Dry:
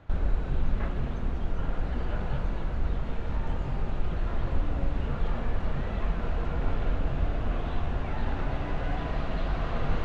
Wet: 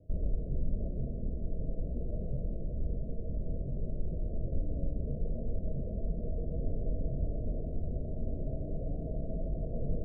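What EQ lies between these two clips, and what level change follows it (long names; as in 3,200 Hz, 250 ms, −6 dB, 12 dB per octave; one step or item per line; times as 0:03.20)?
Chebyshev low-pass with heavy ripple 660 Hz, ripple 3 dB
−3.0 dB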